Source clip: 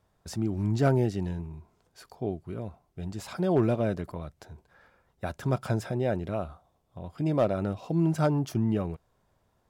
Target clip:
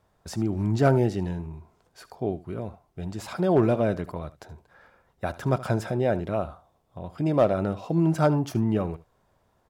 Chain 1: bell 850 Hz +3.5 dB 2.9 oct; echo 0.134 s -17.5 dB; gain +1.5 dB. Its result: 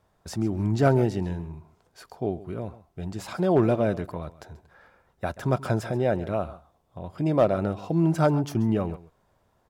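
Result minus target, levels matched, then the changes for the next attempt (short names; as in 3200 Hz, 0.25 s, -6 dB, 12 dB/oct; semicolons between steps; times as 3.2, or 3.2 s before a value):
echo 60 ms late
change: echo 74 ms -17.5 dB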